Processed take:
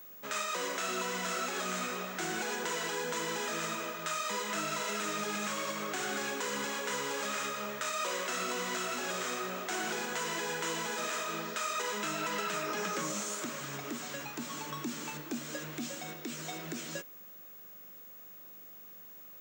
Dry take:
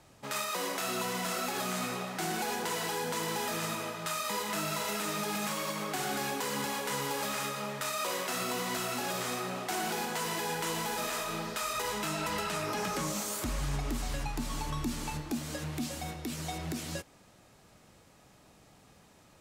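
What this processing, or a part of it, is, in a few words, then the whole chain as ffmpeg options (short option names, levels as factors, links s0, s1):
old television with a line whistle: -af "highpass=f=190:w=0.5412,highpass=f=190:w=1.3066,equalizer=f=260:t=q:w=4:g=-5,equalizer=f=810:t=q:w=4:g=-8,equalizer=f=1500:t=q:w=4:g=3,equalizer=f=4600:t=q:w=4:g=-5,equalizer=f=7000:t=q:w=4:g=4,lowpass=f=7700:w=0.5412,lowpass=f=7700:w=1.3066,aeval=exprs='val(0)+0.00398*sin(2*PI*15625*n/s)':c=same"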